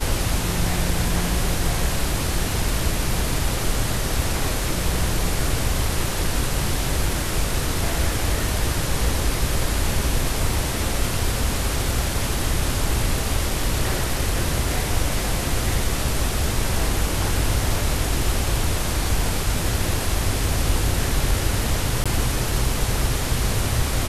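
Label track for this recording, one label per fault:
22.040000	22.060000	dropout 16 ms

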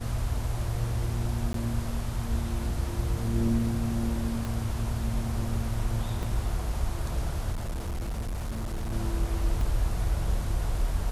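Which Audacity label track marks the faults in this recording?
1.530000	1.540000	dropout
4.450000	4.450000	pop
6.230000	6.230000	dropout 2.4 ms
7.520000	8.930000	clipped -28.5 dBFS
9.610000	9.610000	dropout 2.2 ms

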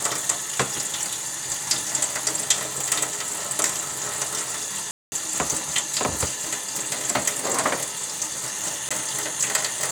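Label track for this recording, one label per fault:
4.910000	5.120000	dropout 210 ms
8.890000	8.910000	dropout 16 ms

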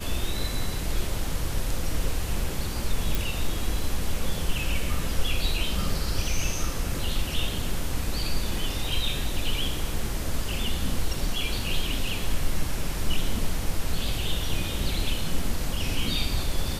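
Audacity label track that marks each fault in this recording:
3.150000	3.150000	pop

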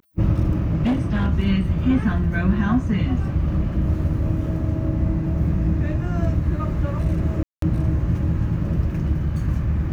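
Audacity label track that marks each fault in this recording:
0.650000	1.280000	clipped -16 dBFS
7.430000	7.620000	dropout 193 ms

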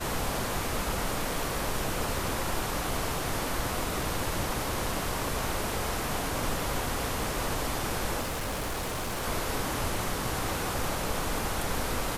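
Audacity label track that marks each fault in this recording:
8.210000	9.240000	clipped -29 dBFS

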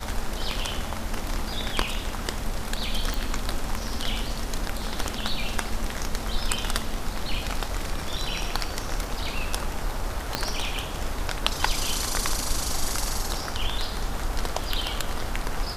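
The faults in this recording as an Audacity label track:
3.140000	3.140000	pop
10.350000	10.350000	pop -7 dBFS

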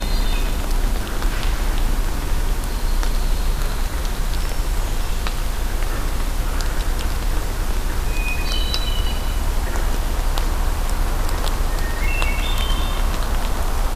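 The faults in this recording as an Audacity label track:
12.040000	12.040000	dropout 2.2 ms

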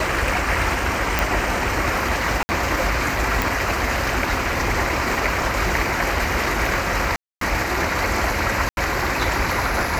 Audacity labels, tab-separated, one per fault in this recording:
1.190000	1.190000	pop
2.430000	2.490000	dropout 60 ms
3.420000	3.420000	pop
7.160000	7.410000	dropout 253 ms
8.690000	8.770000	dropout 81 ms

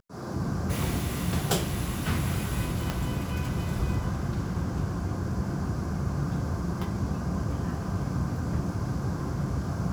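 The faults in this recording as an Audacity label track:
2.900000	2.900000	pop -14 dBFS

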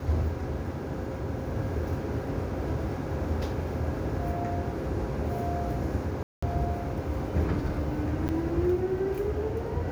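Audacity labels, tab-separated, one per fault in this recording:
6.230000	6.420000	dropout 195 ms
8.280000	8.290000	dropout 8.9 ms

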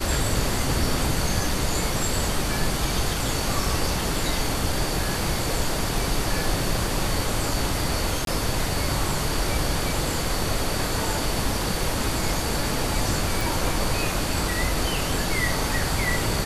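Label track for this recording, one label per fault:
8.250000	8.270000	dropout 22 ms
13.410000	13.410000	pop

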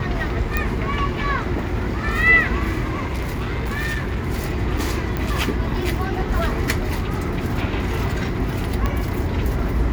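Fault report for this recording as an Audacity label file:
0.570000	0.570000	pop -7 dBFS
2.840000	4.180000	clipped -20 dBFS
5.170000	5.170000	pop -12 dBFS
8.860000	8.860000	pop -9 dBFS

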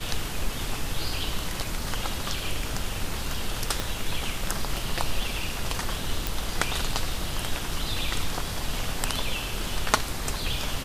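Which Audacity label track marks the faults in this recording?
3.800000	3.800000	pop
6.270000	6.270000	pop

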